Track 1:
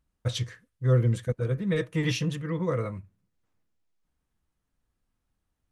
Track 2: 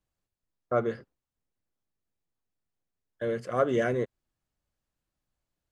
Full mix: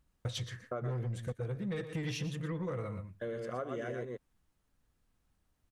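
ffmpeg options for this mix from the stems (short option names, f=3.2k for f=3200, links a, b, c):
-filter_complex "[0:a]asoftclip=type=tanh:threshold=-21dB,volume=2.5dB,asplit=2[a][b];[b]volume=-13dB[c];[1:a]volume=-5dB,asplit=2[d][e];[e]volume=-5dB[f];[c][f]amix=inputs=2:normalize=0,aecho=0:1:120:1[g];[a][d][g]amix=inputs=3:normalize=0,acompressor=threshold=-35dB:ratio=6"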